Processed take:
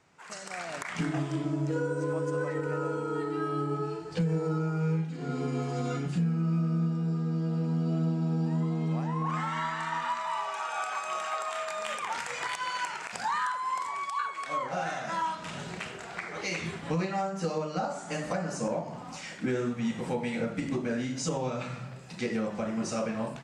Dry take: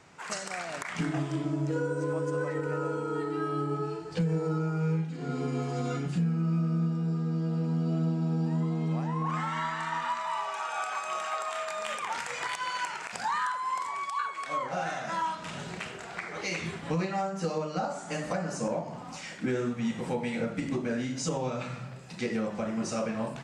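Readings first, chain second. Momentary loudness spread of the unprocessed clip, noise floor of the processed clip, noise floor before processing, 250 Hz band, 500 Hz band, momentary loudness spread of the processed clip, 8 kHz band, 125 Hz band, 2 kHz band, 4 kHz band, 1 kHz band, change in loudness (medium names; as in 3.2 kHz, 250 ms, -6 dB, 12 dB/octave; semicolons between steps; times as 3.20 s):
6 LU, -43 dBFS, -42 dBFS, 0.0 dB, 0.0 dB, 7 LU, -0.5 dB, 0.0 dB, 0.0 dB, 0.0 dB, 0.0 dB, 0.0 dB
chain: level rider gain up to 9 dB; trim -9 dB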